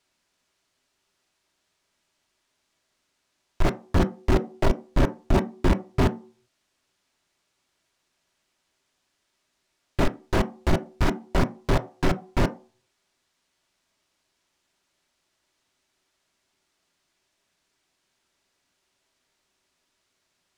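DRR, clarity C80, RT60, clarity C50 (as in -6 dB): 8.0 dB, 23.0 dB, not exponential, 18.0 dB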